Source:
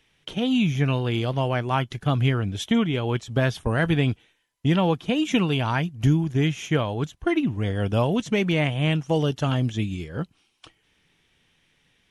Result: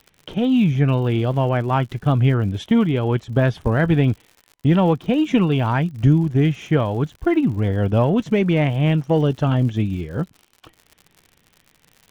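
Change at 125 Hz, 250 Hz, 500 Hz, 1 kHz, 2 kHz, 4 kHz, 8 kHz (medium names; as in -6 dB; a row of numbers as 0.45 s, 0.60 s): +5.5 dB, +5.0 dB, +4.5 dB, +3.5 dB, 0.0 dB, -3.0 dB, no reading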